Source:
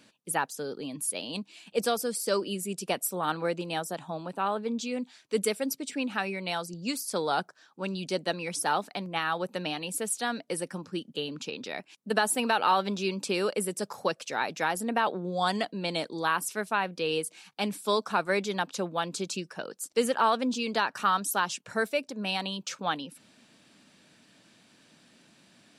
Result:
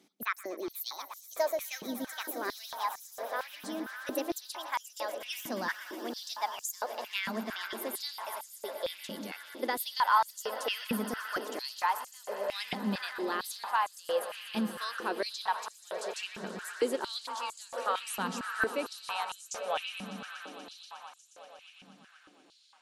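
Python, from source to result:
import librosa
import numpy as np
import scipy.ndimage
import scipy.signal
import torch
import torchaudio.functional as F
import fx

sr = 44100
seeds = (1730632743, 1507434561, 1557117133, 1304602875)

y = fx.speed_glide(x, sr, from_pct=135, to_pct=91)
y = fx.echo_swell(y, sr, ms=120, loudest=5, wet_db=-15)
y = fx.filter_held_highpass(y, sr, hz=4.4, low_hz=200.0, high_hz=7000.0)
y = y * 10.0 ** (-8.5 / 20.0)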